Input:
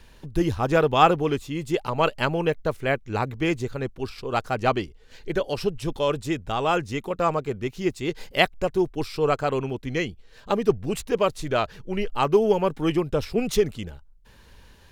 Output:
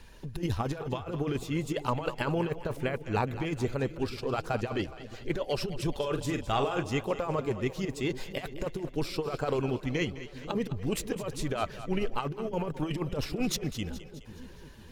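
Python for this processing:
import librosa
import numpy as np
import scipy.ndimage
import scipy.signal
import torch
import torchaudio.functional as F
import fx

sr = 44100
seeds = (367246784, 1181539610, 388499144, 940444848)

p1 = fx.spec_quant(x, sr, step_db=15)
p2 = fx.over_compress(p1, sr, threshold_db=-25.0, ratio=-0.5)
p3 = fx.doubler(p2, sr, ms=44.0, db=-8.0, at=(5.95, 6.83))
p4 = p3 + fx.echo_split(p3, sr, split_hz=490.0, low_ms=496, high_ms=210, feedback_pct=52, wet_db=-13.0, dry=0)
y = p4 * 10.0 ** (-4.0 / 20.0)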